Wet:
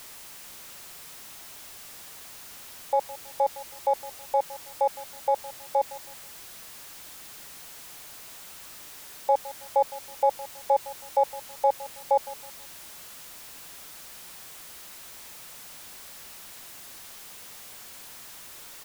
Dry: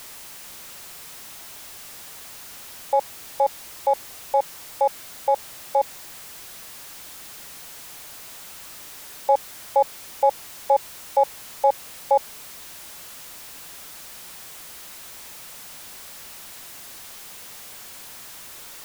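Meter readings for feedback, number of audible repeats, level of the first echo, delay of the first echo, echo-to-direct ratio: 32%, 2, -17.5 dB, 0.161 s, -17.0 dB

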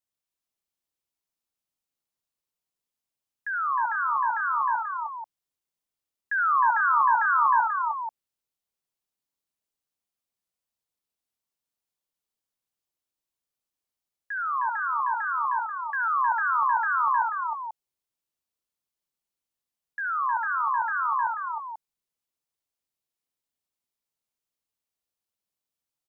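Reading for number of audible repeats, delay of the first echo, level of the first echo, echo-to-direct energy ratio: 4, 69 ms, -7.5 dB, -2.5 dB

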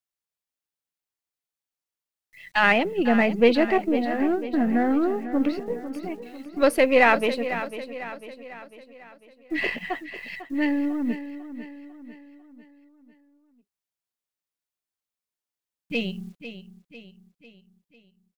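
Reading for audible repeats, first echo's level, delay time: 4, -12.0 dB, 0.498 s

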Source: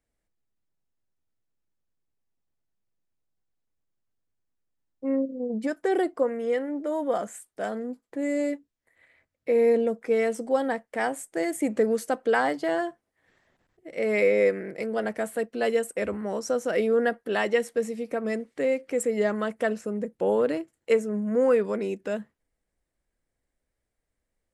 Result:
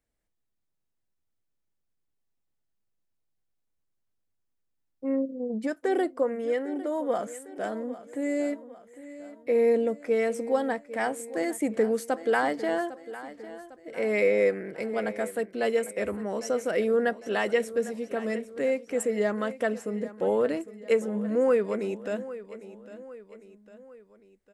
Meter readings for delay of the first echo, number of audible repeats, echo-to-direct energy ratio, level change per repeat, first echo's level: 0.803 s, 3, -14.5 dB, -6.0 dB, -15.5 dB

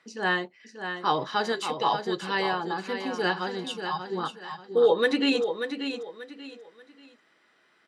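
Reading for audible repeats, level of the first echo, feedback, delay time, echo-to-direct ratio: 3, -8.0 dB, 29%, 0.586 s, -7.5 dB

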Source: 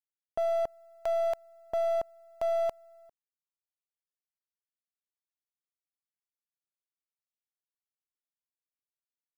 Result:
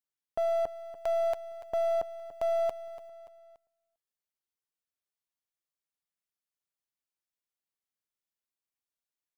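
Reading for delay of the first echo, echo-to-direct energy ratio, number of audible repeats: 0.288 s, -13.0 dB, 3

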